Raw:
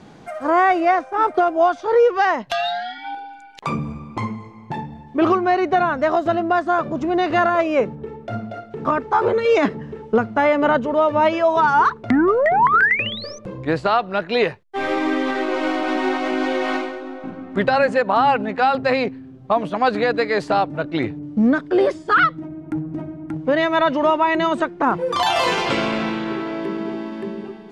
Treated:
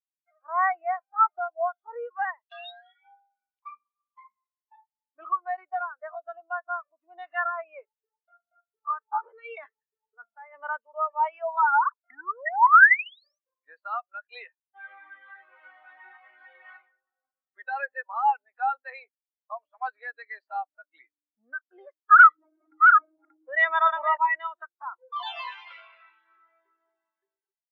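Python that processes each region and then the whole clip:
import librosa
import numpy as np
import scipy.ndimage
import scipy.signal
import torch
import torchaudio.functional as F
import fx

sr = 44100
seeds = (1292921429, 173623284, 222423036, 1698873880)

y = fx.chain(x, sr, fx.over_compress(threshold_db=-21.0, ratio=-1.0),
    fx.air_absorb(metres=140.0), at=(10.04, 10.55))
y = fx.chain(y, sr, fx.reverse_delay(ms=437, wet_db=-3.5),
    fx.env_flatten(amount_pct=70), at=(22.11, 24.17))
y = scipy.signal.sosfilt(scipy.signal.butter(2, 1200.0, 'highpass', fs=sr, output='sos'), y)
y = fx.spectral_expand(y, sr, expansion=2.5)
y = F.gain(torch.from_numpy(y), 2.5).numpy()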